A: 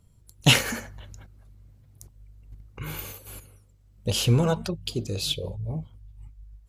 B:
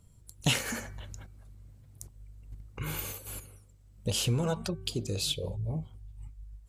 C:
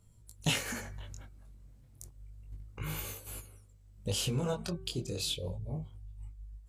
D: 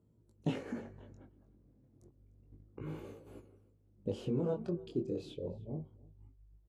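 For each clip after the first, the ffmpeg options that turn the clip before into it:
-af "equalizer=f=8.3k:t=o:w=0.54:g=5.5,bandreject=f=382.7:t=h:w=4,bandreject=f=765.4:t=h:w=4,bandreject=f=1.1481k:t=h:w=4,bandreject=f=1.5308k:t=h:w=4,bandreject=f=1.9135k:t=h:w=4,bandreject=f=2.2962k:t=h:w=4,acompressor=threshold=-31dB:ratio=2"
-af "flanger=delay=17.5:depth=6.4:speed=0.3"
-af "bandpass=f=320:t=q:w=1.8:csg=0,aecho=1:1:301:0.0668,volume=6dB"

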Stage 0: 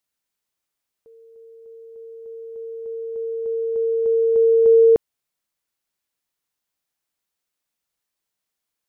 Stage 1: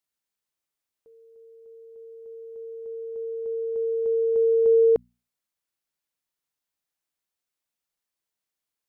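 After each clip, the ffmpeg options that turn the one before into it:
-af "bandreject=f=60:t=h:w=6,bandreject=f=120:t=h:w=6,bandreject=f=180:t=h:w=6,bandreject=f=240:t=h:w=6,volume=-5dB"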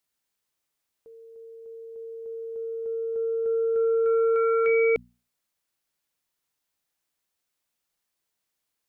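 -af "aeval=exprs='0.211*(cos(1*acos(clip(val(0)/0.211,-1,1)))-cos(1*PI/2))+0.075*(cos(5*acos(clip(val(0)/0.211,-1,1)))-cos(5*PI/2))':c=same,volume=-3.5dB"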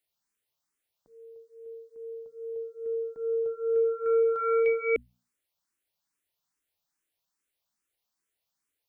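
-filter_complex "[0:a]asplit=2[a][b];[b]afreqshift=2.4[c];[a][c]amix=inputs=2:normalize=1"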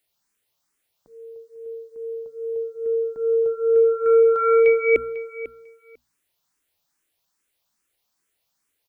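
-af "aecho=1:1:497|994:0.178|0.0267,volume=8.5dB"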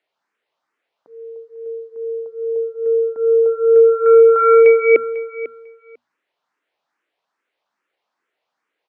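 -af "highpass=380,lowpass=2k,volume=8dB"

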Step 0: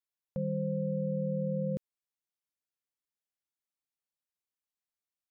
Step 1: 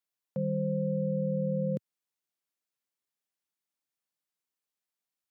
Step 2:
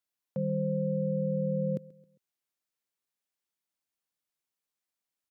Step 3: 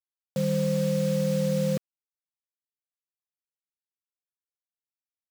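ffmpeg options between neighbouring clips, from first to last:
-af "highpass=f=120:w=0.5412,highpass=f=120:w=1.3066,volume=2.5dB"
-af "aecho=1:1:134|268|402:0.0794|0.0334|0.014"
-af "acrusher=bits=6:mix=0:aa=0.000001,volume=4.5dB"

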